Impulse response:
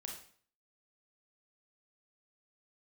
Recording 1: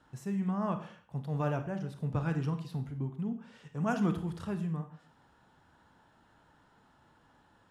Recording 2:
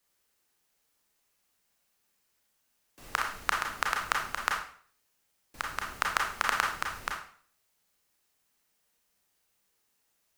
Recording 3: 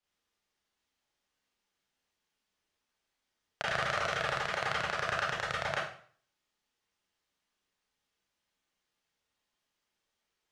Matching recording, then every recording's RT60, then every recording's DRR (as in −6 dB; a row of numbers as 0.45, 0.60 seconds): 2; 0.50, 0.50, 0.50 seconds; 7.5, 0.0, −6.0 decibels